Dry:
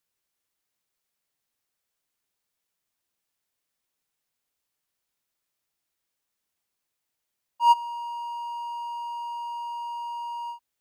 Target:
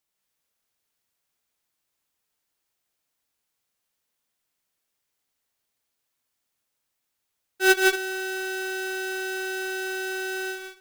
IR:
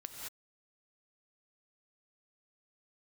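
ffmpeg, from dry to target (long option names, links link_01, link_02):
-filter_complex "[1:a]atrim=start_sample=2205[link_01];[0:a][link_01]afir=irnorm=-1:irlink=0,aeval=exprs='val(0)*sgn(sin(2*PI*570*n/s))':channel_layout=same,volume=5dB"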